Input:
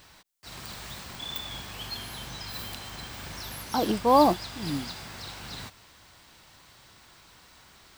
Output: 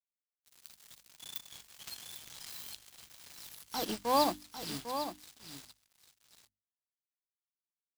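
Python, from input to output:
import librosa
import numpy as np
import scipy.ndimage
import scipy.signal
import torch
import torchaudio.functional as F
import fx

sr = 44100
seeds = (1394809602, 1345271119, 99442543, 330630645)

y = np.sign(x) * np.maximum(np.abs(x) - 10.0 ** (-36.5 / 20.0), 0.0)
y = fx.high_shelf(y, sr, hz=2500.0, db=11.0)
y = fx.transient(y, sr, attack_db=-4, sustain_db=-8)
y = fx.hum_notches(y, sr, base_hz=50, count=6)
y = y + 10.0 ** (-9.0 / 20.0) * np.pad(y, (int(800 * sr / 1000.0), 0))[:len(y)]
y = fx.pre_swell(y, sr, db_per_s=23.0, at=(1.87, 2.88))
y = y * 10.0 ** (-8.0 / 20.0)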